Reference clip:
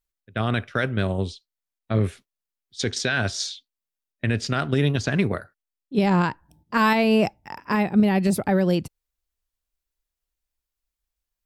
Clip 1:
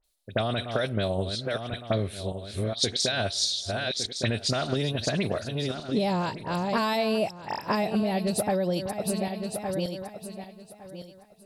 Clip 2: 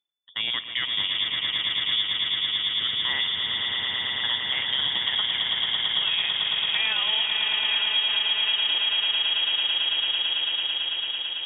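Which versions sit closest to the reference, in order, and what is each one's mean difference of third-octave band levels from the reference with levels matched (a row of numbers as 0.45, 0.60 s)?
1, 2; 6.0, 14.0 dB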